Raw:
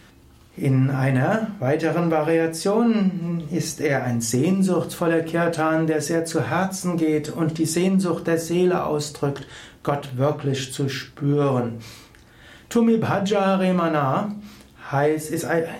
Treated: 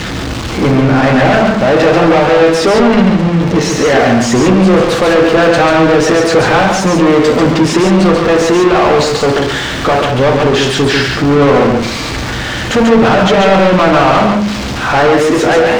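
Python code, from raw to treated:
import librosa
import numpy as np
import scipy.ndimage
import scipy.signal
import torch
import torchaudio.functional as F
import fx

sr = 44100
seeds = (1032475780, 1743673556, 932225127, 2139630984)

p1 = x + 0.5 * 10.0 ** (-23.5 / 20.0) * np.diff(np.sign(x), prepend=np.sign(x[:1]))
p2 = scipy.signal.sosfilt(scipy.signal.butter(2, 100.0, 'highpass', fs=sr, output='sos'), p1)
p3 = fx.bass_treble(p2, sr, bass_db=-9, treble_db=1)
p4 = fx.leveller(p3, sr, passes=5)
p5 = fx.schmitt(p4, sr, flips_db=-20.0)
p6 = p4 + F.gain(torch.from_numpy(p5), -5.5).numpy()
p7 = fx.air_absorb(p6, sr, metres=150.0)
y = p7 + fx.echo_single(p7, sr, ms=140, db=-4.5, dry=0)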